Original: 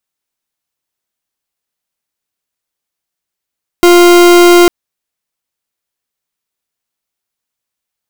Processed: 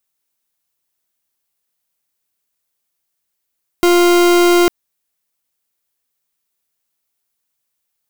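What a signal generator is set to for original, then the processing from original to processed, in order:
pulse 350 Hz, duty 40% -4 dBFS 0.85 s
treble shelf 8.7 kHz +8.5 dB; saturation -10 dBFS

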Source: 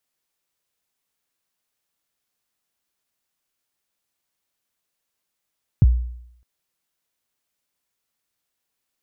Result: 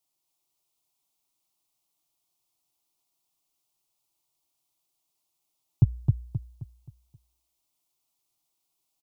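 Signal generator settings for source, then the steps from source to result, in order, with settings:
kick drum length 0.61 s, from 160 Hz, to 60 Hz, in 31 ms, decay 0.73 s, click off, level -7 dB
static phaser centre 330 Hz, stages 8; feedback delay 264 ms, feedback 38%, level -3.5 dB

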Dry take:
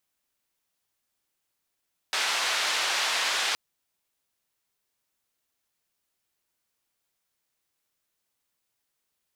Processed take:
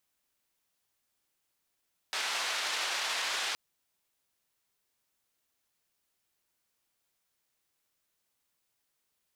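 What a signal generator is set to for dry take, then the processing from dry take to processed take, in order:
noise band 760–4300 Hz, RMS -27 dBFS 1.42 s
peak limiter -24 dBFS

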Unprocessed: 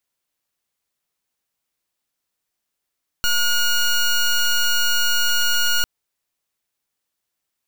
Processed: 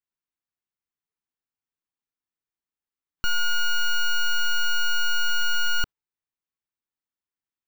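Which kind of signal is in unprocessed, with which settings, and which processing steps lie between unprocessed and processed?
pulse 1.44 kHz, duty 15% -17.5 dBFS 2.60 s
peaking EQ 590 Hz -11.5 dB 0.47 oct; spectral noise reduction 10 dB; peaking EQ 13 kHz -15 dB 2.5 oct

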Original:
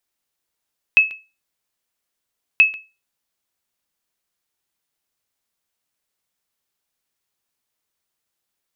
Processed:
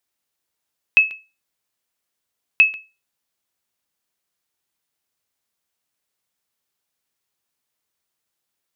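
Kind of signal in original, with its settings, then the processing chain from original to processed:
sonar ping 2.59 kHz, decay 0.28 s, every 1.63 s, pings 2, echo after 0.14 s, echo -20 dB -4 dBFS
high-pass 47 Hz

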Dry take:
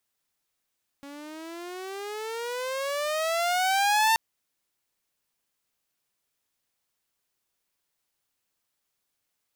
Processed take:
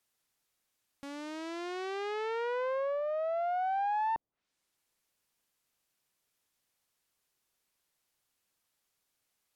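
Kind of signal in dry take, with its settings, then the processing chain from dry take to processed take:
gliding synth tone saw, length 3.13 s, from 278 Hz, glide +20.5 st, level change +22 dB, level -16 dB
low-pass that closes with the level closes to 620 Hz, closed at -26.5 dBFS

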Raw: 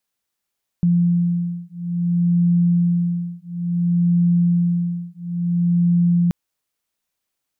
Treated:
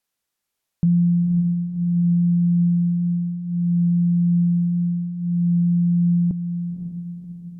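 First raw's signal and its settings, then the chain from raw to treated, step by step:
beating tones 173 Hz, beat 0.58 Hz, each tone -18.5 dBFS 5.48 s
low-pass that closes with the level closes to 320 Hz, closed at -16 dBFS; on a send: echo that smears into a reverb 536 ms, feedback 54%, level -8 dB

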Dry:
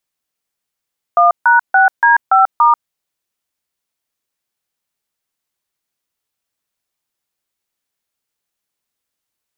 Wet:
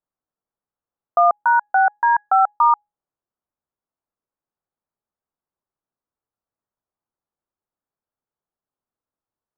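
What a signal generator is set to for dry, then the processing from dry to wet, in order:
DTMF "1#6D5*", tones 139 ms, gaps 147 ms, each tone -9 dBFS
low-pass 1.3 kHz 24 dB/octave; feedback comb 830 Hz, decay 0.26 s, mix 30%

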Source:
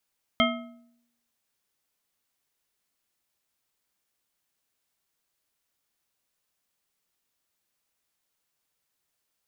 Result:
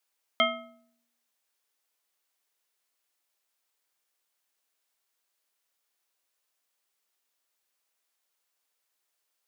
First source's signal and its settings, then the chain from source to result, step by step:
metal hit bar, lowest mode 238 Hz, modes 5, decay 0.77 s, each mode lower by 0 dB, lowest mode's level -22 dB
high-pass 400 Hz 12 dB/octave

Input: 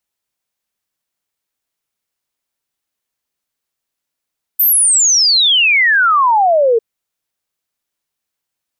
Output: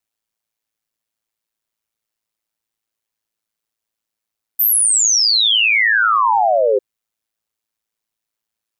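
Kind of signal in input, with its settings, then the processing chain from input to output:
log sweep 14 kHz -> 440 Hz 2.20 s -8 dBFS
ring modulator 55 Hz

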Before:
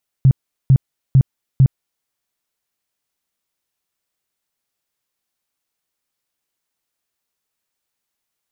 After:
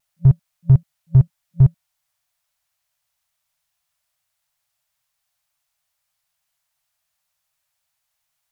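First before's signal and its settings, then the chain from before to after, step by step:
tone bursts 133 Hz, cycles 8, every 0.45 s, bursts 4, -6 dBFS
FFT band-reject 170–560 Hz; in parallel at -5 dB: saturation -19.5 dBFS; on the sum: vibrato 0.63 Hz 18 cents

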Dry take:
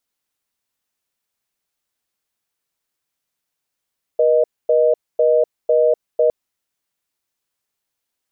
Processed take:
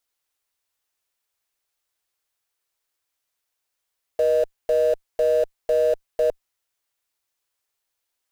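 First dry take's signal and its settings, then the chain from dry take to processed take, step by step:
call progress tone reorder tone, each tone -14 dBFS 2.11 s
in parallel at -9 dB: Schmitt trigger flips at -22.5 dBFS; on the sum: peaking EQ 190 Hz -15 dB 0.98 oct; peak limiter -13 dBFS

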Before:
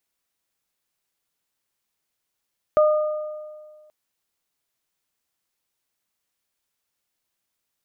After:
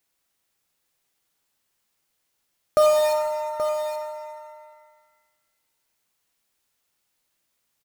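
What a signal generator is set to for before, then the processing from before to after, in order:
additive tone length 1.13 s, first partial 610 Hz, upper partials -9 dB, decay 1.77 s, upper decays 1.33 s, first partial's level -12 dB
in parallel at -6 dB: integer overflow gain 23.5 dB; on the sum: delay 828 ms -10 dB; pitch-shifted reverb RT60 1.5 s, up +7 st, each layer -8 dB, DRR 5.5 dB

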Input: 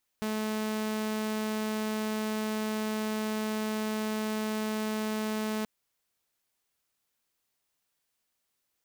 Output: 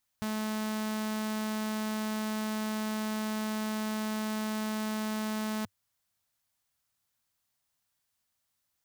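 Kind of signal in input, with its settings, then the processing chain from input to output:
tone saw 216 Hz -27 dBFS 5.43 s
fifteen-band graphic EQ 100 Hz +8 dB, 400 Hz -10 dB, 2.5 kHz -3 dB

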